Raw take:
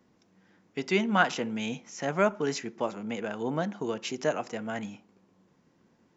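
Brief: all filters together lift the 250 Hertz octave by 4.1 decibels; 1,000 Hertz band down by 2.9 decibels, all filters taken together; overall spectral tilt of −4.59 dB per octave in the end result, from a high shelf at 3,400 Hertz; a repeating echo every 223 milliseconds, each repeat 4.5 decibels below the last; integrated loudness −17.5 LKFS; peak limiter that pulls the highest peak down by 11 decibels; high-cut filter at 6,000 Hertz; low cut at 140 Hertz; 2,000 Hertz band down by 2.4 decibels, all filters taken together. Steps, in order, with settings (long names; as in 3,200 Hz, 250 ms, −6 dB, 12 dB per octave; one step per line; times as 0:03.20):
high-pass filter 140 Hz
low-pass filter 6,000 Hz
parametric band 250 Hz +6 dB
parametric band 1,000 Hz −4.5 dB
parametric band 2,000 Hz −4 dB
high-shelf EQ 3,400 Hz +8.5 dB
brickwall limiter −21 dBFS
repeating echo 223 ms, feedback 60%, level −4.5 dB
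level +13 dB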